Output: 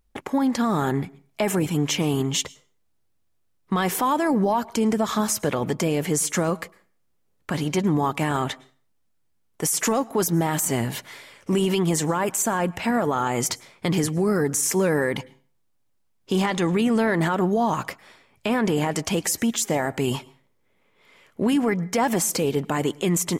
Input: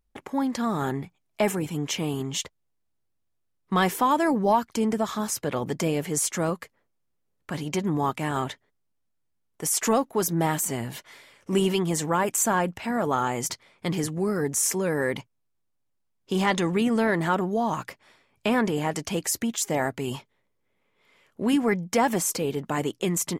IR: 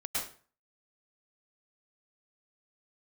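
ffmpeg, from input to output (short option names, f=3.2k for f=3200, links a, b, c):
-filter_complex "[0:a]alimiter=limit=-20.5dB:level=0:latency=1:release=97,asplit=2[a][b];[1:a]atrim=start_sample=2205[c];[b][c]afir=irnorm=-1:irlink=0,volume=-26dB[d];[a][d]amix=inputs=2:normalize=0,volume=6.5dB"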